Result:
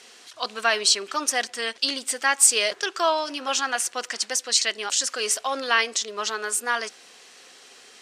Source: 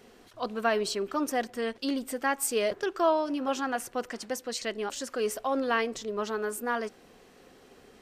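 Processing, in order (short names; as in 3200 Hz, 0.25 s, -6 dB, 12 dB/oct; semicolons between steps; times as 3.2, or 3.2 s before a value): weighting filter ITU-R 468; gain +4.5 dB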